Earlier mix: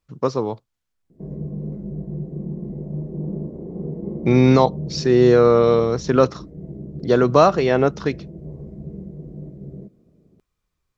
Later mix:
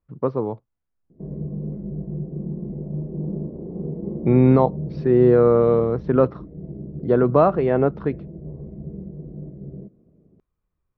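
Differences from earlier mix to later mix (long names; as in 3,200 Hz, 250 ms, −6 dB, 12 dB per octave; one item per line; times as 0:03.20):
speech: add high-frequency loss of the air 370 metres
master: add low-pass filter 1,200 Hz 6 dB per octave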